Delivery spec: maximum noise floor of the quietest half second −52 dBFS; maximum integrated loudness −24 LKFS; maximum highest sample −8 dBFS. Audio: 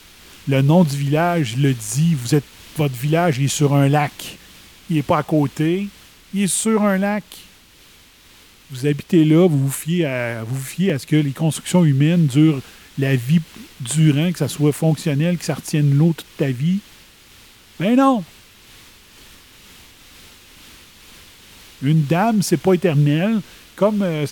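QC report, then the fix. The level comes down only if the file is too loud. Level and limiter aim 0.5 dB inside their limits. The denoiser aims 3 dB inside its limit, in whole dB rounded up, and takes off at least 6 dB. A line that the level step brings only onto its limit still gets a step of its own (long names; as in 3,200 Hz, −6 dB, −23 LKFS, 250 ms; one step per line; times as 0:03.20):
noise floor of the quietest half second −48 dBFS: out of spec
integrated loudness −18.0 LKFS: out of spec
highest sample −4.0 dBFS: out of spec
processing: level −6.5 dB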